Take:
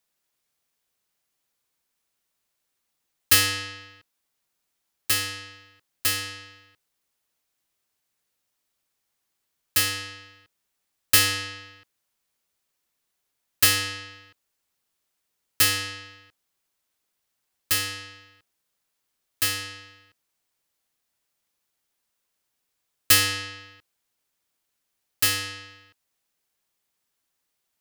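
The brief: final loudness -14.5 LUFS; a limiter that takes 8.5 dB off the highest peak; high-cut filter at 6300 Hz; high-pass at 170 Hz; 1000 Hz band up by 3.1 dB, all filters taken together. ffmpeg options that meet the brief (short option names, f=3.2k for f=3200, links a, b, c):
-af "highpass=170,lowpass=6.3k,equalizer=f=1k:t=o:g=4.5,volume=14dB,alimiter=limit=-2.5dB:level=0:latency=1"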